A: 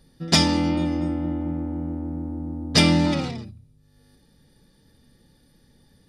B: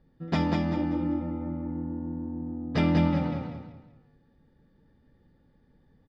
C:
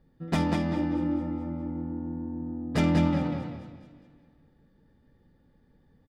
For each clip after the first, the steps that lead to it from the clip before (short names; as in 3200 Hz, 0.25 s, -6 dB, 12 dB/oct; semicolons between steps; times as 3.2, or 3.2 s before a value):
LPF 1700 Hz 12 dB/oct; on a send: feedback echo 0.193 s, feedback 34%, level -4 dB; on the sum: gain -6 dB
tracing distortion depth 0.072 ms; feedback echo 0.214 s, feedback 58%, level -18 dB